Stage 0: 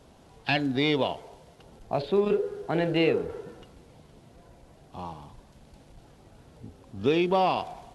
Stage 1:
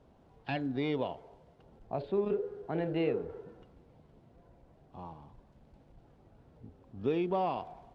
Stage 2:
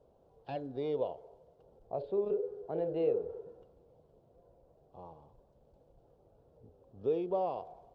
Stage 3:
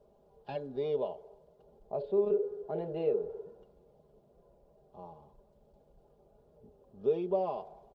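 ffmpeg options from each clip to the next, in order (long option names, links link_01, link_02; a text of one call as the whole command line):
ffmpeg -i in.wav -af "lowpass=frequency=1200:poles=1,volume=-6.5dB" out.wav
ffmpeg -i in.wav -af "equalizer=frequency=250:width_type=o:width=1:gain=-6,equalizer=frequency=500:width_type=o:width=1:gain=12,equalizer=frequency=2000:width_type=o:width=1:gain=-11,volume=-7dB" out.wav
ffmpeg -i in.wav -af "aecho=1:1:4.9:0.62" out.wav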